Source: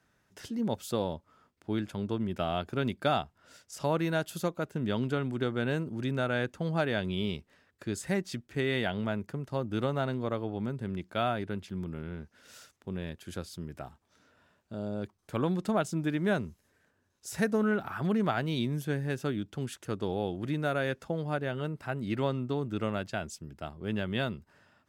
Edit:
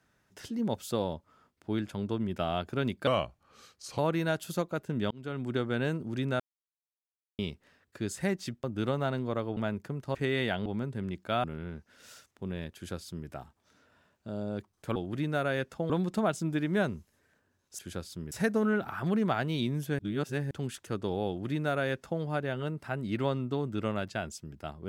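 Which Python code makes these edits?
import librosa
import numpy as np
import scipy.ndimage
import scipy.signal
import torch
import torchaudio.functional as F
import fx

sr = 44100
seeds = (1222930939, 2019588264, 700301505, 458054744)

y = fx.edit(x, sr, fx.speed_span(start_s=3.07, length_s=0.78, speed=0.85),
    fx.fade_in_span(start_s=4.97, length_s=0.4),
    fx.silence(start_s=6.26, length_s=0.99),
    fx.swap(start_s=8.5, length_s=0.51, other_s=9.59, other_length_s=0.93),
    fx.cut(start_s=11.3, length_s=0.59),
    fx.duplicate(start_s=13.2, length_s=0.53, to_s=17.3),
    fx.reverse_span(start_s=18.97, length_s=0.52),
    fx.duplicate(start_s=20.26, length_s=0.94, to_s=15.41), tone=tone)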